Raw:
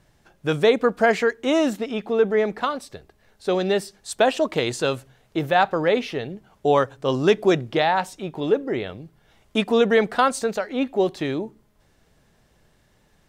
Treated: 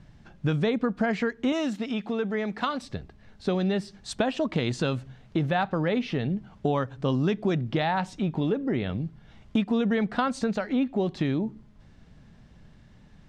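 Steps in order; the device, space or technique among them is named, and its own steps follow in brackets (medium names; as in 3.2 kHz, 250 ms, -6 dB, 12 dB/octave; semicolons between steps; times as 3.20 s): jukebox (low-pass 5.1 kHz 12 dB/octave; resonant low shelf 300 Hz +7.5 dB, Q 1.5; compression 4:1, threshold -25 dBFS, peak gain reduction 13 dB); 1.52–2.82 s: tilt EQ +2 dB/octave; trim +1.5 dB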